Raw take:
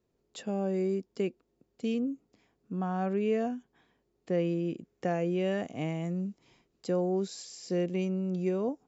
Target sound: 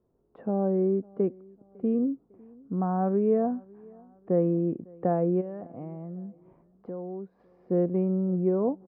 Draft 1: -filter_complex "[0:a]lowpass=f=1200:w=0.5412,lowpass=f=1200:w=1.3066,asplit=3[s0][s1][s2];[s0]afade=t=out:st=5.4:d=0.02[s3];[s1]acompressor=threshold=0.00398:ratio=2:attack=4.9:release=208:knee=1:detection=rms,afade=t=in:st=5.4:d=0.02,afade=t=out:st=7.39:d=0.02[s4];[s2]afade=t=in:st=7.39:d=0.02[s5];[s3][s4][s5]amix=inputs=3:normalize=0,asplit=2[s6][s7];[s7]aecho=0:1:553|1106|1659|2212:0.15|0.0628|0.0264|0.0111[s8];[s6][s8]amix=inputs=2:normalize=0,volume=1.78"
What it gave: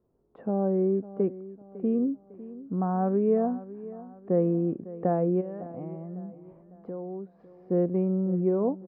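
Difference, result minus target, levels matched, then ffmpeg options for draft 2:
echo-to-direct +9 dB
-filter_complex "[0:a]lowpass=f=1200:w=0.5412,lowpass=f=1200:w=1.3066,asplit=3[s0][s1][s2];[s0]afade=t=out:st=5.4:d=0.02[s3];[s1]acompressor=threshold=0.00398:ratio=2:attack=4.9:release=208:knee=1:detection=rms,afade=t=in:st=5.4:d=0.02,afade=t=out:st=7.39:d=0.02[s4];[s2]afade=t=in:st=7.39:d=0.02[s5];[s3][s4][s5]amix=inputs=3:normalize=0,asplit=2[s6][s7];[s7]aecho=0:1:553|1106:0.0531|0.0223[s8];[s6][s8]amix=inputs=2:normalize=0,volume=1.78"

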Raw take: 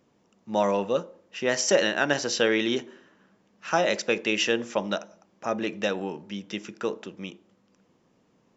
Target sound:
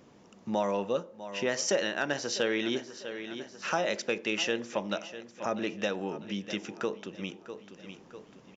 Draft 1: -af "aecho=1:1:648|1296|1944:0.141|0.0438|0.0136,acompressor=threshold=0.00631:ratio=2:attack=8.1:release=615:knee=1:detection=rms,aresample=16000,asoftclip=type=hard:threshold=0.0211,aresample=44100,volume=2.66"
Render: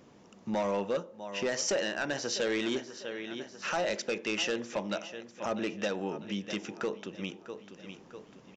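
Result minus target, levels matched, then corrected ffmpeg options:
hard clipper: distortion +23 dB
-af "aecho=1:1:648|1296|1944:0.141|0.0438|0.0136,acompressor=threshold=0.00631:ratio=2:attack=8.1:release=615:knee=1:detection=rms,aresample=16000,asoftclip=type=hard:threshold=0.0562,aresample=44100,volume=2.66"

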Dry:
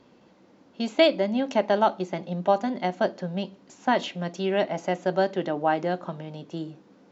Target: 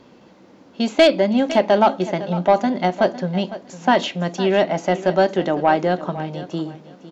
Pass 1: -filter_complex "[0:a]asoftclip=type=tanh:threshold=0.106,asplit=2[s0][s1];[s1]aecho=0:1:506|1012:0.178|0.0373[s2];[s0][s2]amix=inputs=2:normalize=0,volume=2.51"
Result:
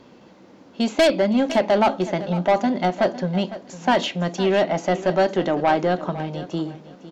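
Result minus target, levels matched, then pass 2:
saturation: distortion +8 dB
-filter_complex "[0:a]asoftclip=type=tanh:threshold=0.237,asplit=2[s0][s1];[s1]aecho=0:1:506|1012:0.178|0.0373[s2];[s0][s2]amix=inputs=2:normalize=0,volume=2.51"

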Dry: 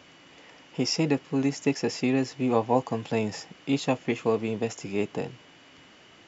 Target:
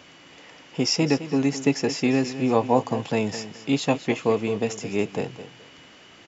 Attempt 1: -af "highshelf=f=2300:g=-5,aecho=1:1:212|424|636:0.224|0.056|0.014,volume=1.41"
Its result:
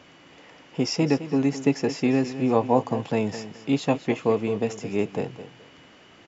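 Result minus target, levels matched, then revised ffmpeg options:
4 kHz band -5.0 dB
-af "highshelf=f=2300:g=2,aecho=1:1:212|424|636:0.224|0.056|0.014,volume=1.41"

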